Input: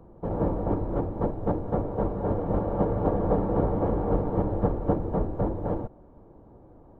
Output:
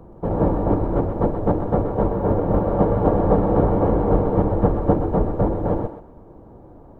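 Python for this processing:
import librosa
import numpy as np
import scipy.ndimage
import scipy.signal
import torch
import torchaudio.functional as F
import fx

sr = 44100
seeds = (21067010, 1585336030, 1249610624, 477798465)

y = fx.echo_thinned(x, sr, ms=127, feedback_pct=26, hz=420.0, wet_db=-7.0)
y = fx.resample_linear(y, sr, factor=3, at=(2.09, 2.65))
y = y * librosa.db_to_amplitude(7.0)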